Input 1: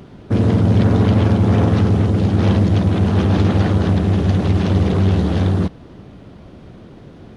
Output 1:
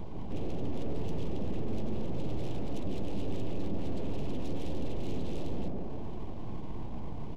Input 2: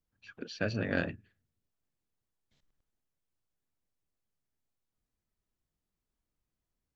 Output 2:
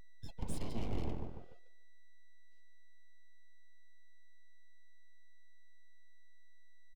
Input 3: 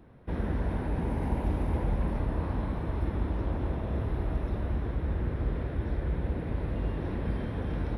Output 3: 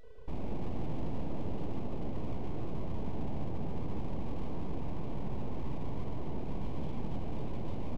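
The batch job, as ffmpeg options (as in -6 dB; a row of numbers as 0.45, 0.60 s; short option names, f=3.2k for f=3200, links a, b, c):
-filter_complex "[0:a]acrossover=split=160[a][b];[b]acontrast=78[c];[a][c]amix=inputs=2:normalize=0,asplit=3[d][e][f];[d]bandpass=f=530:t=q:w=8,volume=0dB[g];[e]bandpass=f=1.84k:t=q:w=8,volume=-6dB[h];[f]bandpass=f=2.48k:t=q:w=8,volume=-9dB[i];[g][h][i]amix=inputs=3:normalize=0,acrossover=split=120|860[j][k][l];[j]acompressor=threshold=-49dB:ratio=4[m];[k]acompressor=threshold=-34dB:ratio=4[n];[l]acompressor=threshold=-54dB:ratio=4[o];[m][n][o]amix=inputs=3:normalize=0,afftfilt=real='re*lt(hypot(re,im),0.0794)':imag='im*lt(hypot(re,im),0.0794)':win_size=1024:overlap=0.75,bass=f=250:g=6,treble=f=4k:g=15,asplit=2[p][q];[q]adelay=147,lowpass=f=1.7k:p=1,volume=-4.5dB,asplit=2[r][s];[s]adelay=147,lowpass=f=1.7k:p=1,volume=0.48,asplit=2[t][u];[u]adelay=147,lowpass=f=1.7k:p=1,volume=0.48,asplit=2[v][w];[w]adelay=147,lowpass=f=1.7k:p=1,volume=0.48,asplit=2[x][y];[y]adelay=147,lowpass=f=1.7k:p=1,volume=0.48,asplit=2[z][aa];[aa]adelay=147,lowpass=f=1.7k:p=1,volume=0.48[ab];[p][r][t][v][x][z][ab]amix=inputs=7:normalize=0,afftdn=nr=16:nf=-53,aexciter=amount=3.8:drive=5.3:freq=2.9k,aresample=16000,asoftclip=type=tanh:threshold=-37dB,aresample=44100,aeval=exprs='val(0)+0.001*sin(2*PI*980*n/s)':c=same,aeval=exprs='abs(val(0))':c=same,firequalizer=gain_entry='entry(220,0);entry(1400,-24);entry(2600,-15)':delay=0.05:min_phase=1,volume=15dB"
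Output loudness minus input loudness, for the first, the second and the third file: -22.5, -9.0, -8.0 LU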